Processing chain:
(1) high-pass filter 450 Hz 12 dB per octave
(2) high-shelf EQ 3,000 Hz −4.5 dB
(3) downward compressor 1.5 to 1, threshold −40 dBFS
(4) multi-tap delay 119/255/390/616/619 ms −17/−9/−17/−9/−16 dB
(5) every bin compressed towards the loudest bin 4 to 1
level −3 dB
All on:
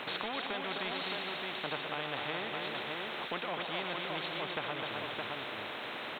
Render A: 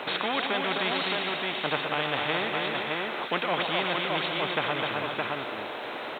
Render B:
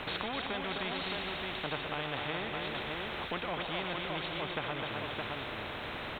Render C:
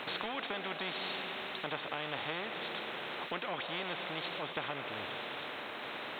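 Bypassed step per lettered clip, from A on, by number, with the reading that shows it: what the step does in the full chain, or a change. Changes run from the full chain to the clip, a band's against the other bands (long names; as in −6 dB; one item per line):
3, average gain reduction 3.5 dB
1, 125 Hz band +5.5 dB
4, change in crest factor +1.5 dB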